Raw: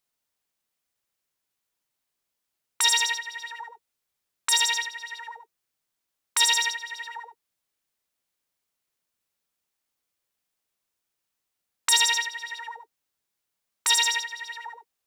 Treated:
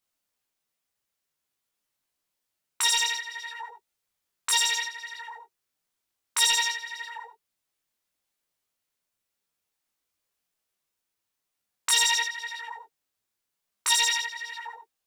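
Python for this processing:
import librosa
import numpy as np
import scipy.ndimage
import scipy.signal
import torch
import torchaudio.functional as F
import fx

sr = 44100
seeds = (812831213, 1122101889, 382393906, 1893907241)

p1 = np.clip(x, -10.0 ** (-22.0 / 20.0), 10.0 ** (-22.0 / 20.0))
p2 = x + (p1 * librosa.db_to_amplitude(-6.5))
y = fx.detune_double(p2, sr, cents=17)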